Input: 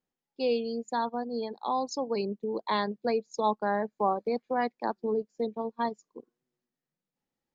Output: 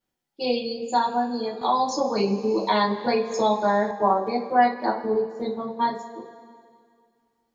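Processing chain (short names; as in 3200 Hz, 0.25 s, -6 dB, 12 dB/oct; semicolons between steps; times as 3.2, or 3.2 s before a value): two-slope reverb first 0.24 s, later 2.2 s, from -20 dB, DRR -7 dB; 1.61–3.91 three-band squash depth 70%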